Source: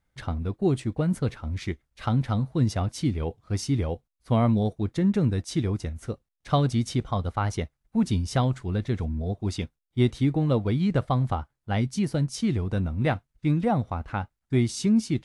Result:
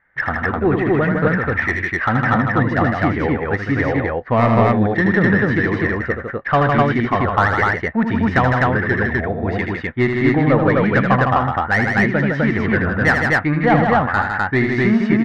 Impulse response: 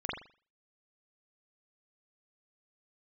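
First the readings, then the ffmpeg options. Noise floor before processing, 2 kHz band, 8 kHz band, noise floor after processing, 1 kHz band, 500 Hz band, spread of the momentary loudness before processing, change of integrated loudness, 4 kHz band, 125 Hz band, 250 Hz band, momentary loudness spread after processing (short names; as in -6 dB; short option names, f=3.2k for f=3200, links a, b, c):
-81 dBFS, +23.5 dB, n/a, -28 dBFS, +15.0 dB, +12.0 dB, 9 LU, +9.5 dB, +3.5 dB, +5.0 dB, +8.0 dB, 5 LU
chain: -filter_complex "[0:a]lowpass=f=1.8k:t=q:w=9.8,asplit=2[a][b];[b]highpass=f=720:p=1,volume=18dB,asoftclip=type=tanh:threshold=-6dB[c];[a][c]amix=inputs=2:normalize=0,lowpass=f=1.4k:p=1,volume=-6dB,aecho=1:1:78.72|157.4|253.6:0.501|0.562|0.891,volume=2.5dB"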